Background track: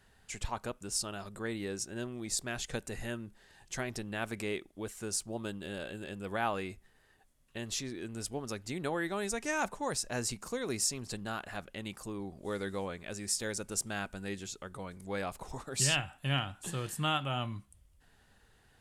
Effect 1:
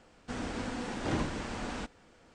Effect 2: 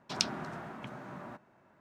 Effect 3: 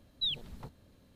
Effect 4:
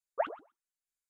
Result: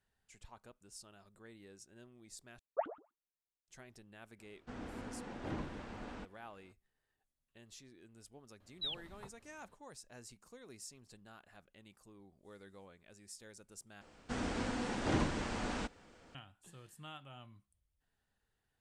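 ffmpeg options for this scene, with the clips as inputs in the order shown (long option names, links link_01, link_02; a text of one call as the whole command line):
ffmpeg -i bed.wav -i cue0.wav -i cue1.wav -i cue2.wav -i cue3.wav -filter_complex "[1:a]asplit=2[link_01][link_02];[0:a]volume=-19dB[link_03];[4:a]tiltshelf=frequency=1300:gain=7[link_04];[link_01]lowpass=frequency=2300:poles=1[link_05];[3:a]equalizer=frequency=1200:width=0.62:gain=10[link_06];[link_03]asplit=3[link_07][link_08][link_09];[link_07]atrim=end=2.594[link_10];[link_04]atrim=end=1.09,asetpts=PTS-STARTPTS,volume=-8.5dB[link_11];[link_08]atrim=start=3.676:end=14.014[link_12];[link_02]atrim=end=2.34,asetpts=PTS-STARTPTS,volume=-1dB[link_13];[link_09]atrim=start=16.346[link_14];[link_05]atrim=end=2.34,asetpts=PTS-STARTPTS,volume=-9dB,afade=type=in:duration=0.004:curve=hsin,afade=type=out:start_time=2.336:duration=0.004:curve=hsin,adelay=4390[link_15];[link_06]atrim=end=1.15,asetpts=PTS-STARTPTS,volume=-10.5dB,afade=type=in:duration=0.004:curve=hsin,afade=type=out:start_time=1.146:duration=0.004:curve=hsin,adelay=8600[link_16];[link_10][link_11]acrossfade=duration=0.004:curve1=hsin:curve2=hsin[link_17];[link_17][link_12]acrossfade=duration=0.004:curve1=hsin:curve2=hsin[link_18];[link_18][link_13]acrossfade=duration=0.004:curve1=hsin:curve2=hsin[link_19];[link_19][link_14]acrossfade=duration=0.004:curve1=hsin:curve2=hsin[link_20];[link_20][link_15][link_16]amix=inputs=3:normalize=0" out.wav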